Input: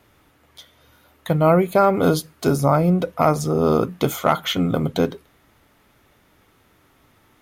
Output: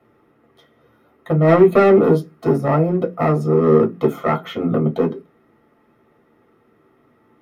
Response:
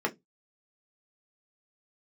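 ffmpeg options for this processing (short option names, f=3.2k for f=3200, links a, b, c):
-filter_complex "[0:a]tiltshelf=f=1.1k:g=4,asplit=3[a][b][c];[a]afade=t=out:st=1.47:d=0.02[d];[b]acontrast=85,afade=t=in:st=1.47:d=0.02,afade=t=out:st=1.98:d=0.02[e];[c]afade=t=in:st=1.98:d=0.02[f];[d][e][f]amix=inputs=3:normalize=0,aeval=exprs='clip(val(0),-1,0.237)':c=same[g];[1:a]atrim=start_sample=2205[h];[g][h]afir=irnorm=-1:irlink=0,volume=-10.5dB"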